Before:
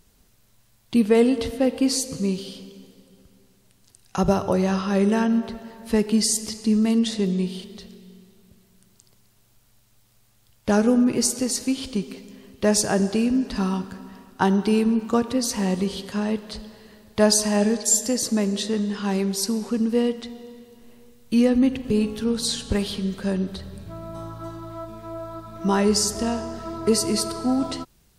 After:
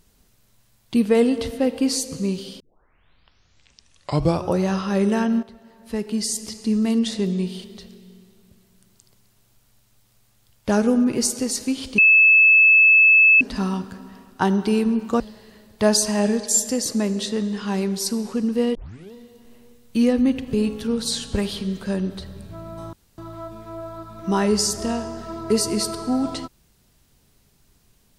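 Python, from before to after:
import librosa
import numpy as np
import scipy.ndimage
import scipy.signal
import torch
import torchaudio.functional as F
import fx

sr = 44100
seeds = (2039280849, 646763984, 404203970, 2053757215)

y = fx.edit(x, sr, fx.tape_start(start_s=2.6, length_s=1.99),
    fx.fade_in_from(start_s=5.43, length_s=1.53, floor_db=-13.0),
    fx.bleep(start_s=11.98, length_s=1.43, hz=2610.0, db=-9.5),
    fx.cut(start_s=15.2, length_s=1.37),
    fx.tape_start(start_s=20.12, length_s=0.38),
    fx.room_tone_fill(start_s=24.3, length_s=0.25), tone=tone)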